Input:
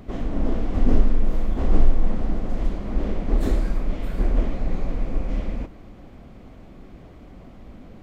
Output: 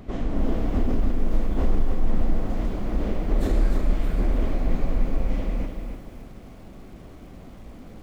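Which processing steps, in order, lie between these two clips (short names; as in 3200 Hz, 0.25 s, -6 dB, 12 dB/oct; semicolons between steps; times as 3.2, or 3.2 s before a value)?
limiter -13 dBFS, peak gain reduction 9.5 dB; lo-fi delay 0.295 s, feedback 35%, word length 9-bit, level -6 dB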